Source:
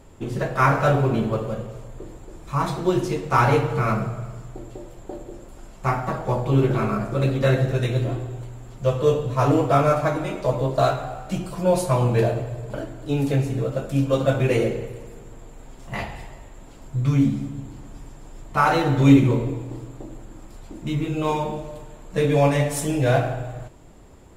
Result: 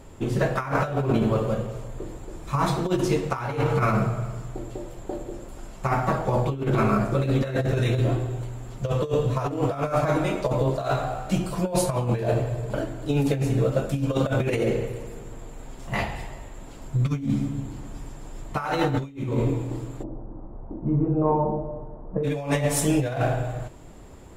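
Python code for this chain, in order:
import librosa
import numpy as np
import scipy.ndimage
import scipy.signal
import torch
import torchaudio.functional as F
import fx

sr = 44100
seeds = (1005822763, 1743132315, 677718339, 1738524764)

y = fx.lowpass(x, sr, hz=1000.0, slope=24, at=(20.02, 22.23), fade=0.02)
y = fx.over_compress(y, sr, threshold_db=-22.0, ratio=-0.5)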